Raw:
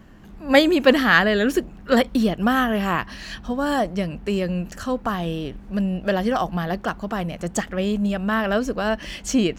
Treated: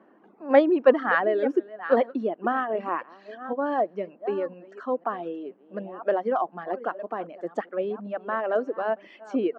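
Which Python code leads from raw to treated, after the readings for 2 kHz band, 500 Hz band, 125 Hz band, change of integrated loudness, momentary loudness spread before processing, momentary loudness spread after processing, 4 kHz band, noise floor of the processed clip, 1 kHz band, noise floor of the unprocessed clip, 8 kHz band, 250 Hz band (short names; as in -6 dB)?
-9.0 dB, -1.0 dB, -20.0 dB, -4.5 dB, 11 LU, 14 LU, under -15 dB, -57 dBFS, -3.0 dB, -42 dBFS, under -30 dB, -9.0 dB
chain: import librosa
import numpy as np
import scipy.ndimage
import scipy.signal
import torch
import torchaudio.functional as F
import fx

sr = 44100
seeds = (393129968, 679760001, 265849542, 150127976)

y = fx.reverse_delay(x, sr, ms=504, wet_db=-11.5)
y = scipy.signal.sosfilt(scipy.signal.butter(2, 1100.0, 'lowpass', fs=sr, output='sos'), y)
y = fx.dereverb_blind(y, sr, rt60_s=1.9)
y = scipy.signal.sosfilt(scipy.signal.butter(4, 310.0, 'highpass', fs=sr, output='sos'), y)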